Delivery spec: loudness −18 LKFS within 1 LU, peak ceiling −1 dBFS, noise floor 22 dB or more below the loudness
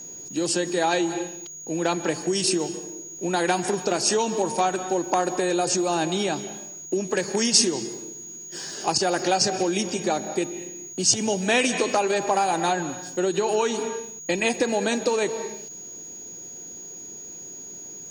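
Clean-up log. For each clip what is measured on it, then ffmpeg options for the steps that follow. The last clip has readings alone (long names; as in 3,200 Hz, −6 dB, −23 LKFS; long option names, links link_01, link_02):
interfering tone 6,700 Hz; level of the tone −37 dBFS; integrated loudness −24.0 LKFS; sample peak −4.5 dBFS; target loudness −18.0 LKFS
→ -af "bandreject=frequency=6700:width=30"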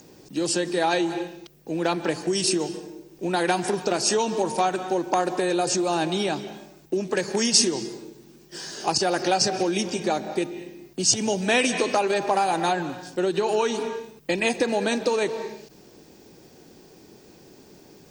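interfering tone none found; integrated loudness −24.0 LKFS; sample peak −4.5 dBFS; target loudness −18.0 LKFS
→ -af "volume=6dB,alimiter=limit=-1dB:level=0:latency=1"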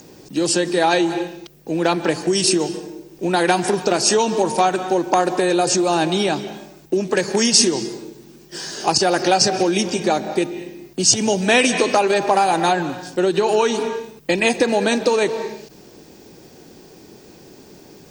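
integrated loudness −18.5 LKFS; sample peak −1.0 dBFS; background noise floor −46 dBFS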